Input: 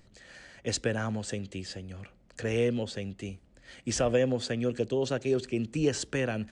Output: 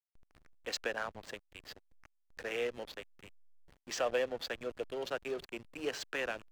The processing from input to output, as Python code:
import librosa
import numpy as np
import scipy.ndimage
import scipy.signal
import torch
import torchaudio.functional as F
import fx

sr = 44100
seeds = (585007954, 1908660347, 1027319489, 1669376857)

y = fx.bandpass_edges(x, sr, low_hz=690.0, high_hz=4600.0)
y = fx.backlash(y, sr, play_db=-37.5)